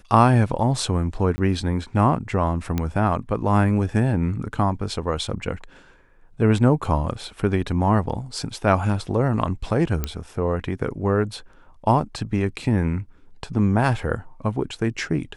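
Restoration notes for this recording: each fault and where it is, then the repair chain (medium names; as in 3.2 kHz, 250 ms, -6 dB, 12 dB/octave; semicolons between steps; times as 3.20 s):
1.36–1.38 s: dropout 20 ms
2.78 s: pop -11 dBFS
10.04 s: pop -10 dBFS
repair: de-click; interpolate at 1.36 s, 20 ms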